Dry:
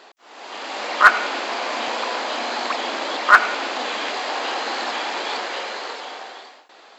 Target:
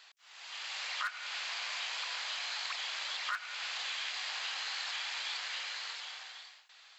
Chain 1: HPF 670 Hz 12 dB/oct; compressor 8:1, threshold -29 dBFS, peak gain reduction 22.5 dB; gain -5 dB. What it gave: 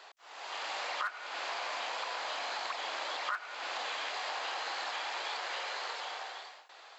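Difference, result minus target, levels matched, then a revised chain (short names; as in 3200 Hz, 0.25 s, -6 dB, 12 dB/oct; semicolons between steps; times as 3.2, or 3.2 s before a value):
500 Hz band +14.5 dB
HPF 2100 Hz 12 dB/oct; compressor 8:1, threshold -29 dBFS, peak gain reduction 16 dB; gain -5 dB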